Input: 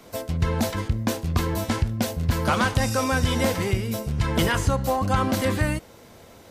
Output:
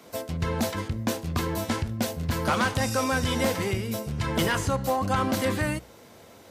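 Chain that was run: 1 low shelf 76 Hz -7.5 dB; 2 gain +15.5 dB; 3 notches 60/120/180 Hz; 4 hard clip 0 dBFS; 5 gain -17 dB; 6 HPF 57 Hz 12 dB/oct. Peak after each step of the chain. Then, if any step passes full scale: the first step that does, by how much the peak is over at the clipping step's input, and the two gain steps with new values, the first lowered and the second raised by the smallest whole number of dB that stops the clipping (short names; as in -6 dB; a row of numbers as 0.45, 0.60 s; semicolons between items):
-11.0, +4.5, +4.5, 0.0, -17.0, -13.5 dBFS; step 2, 4.5 dB; step 2 +10.5 dB, step 5 -12 dB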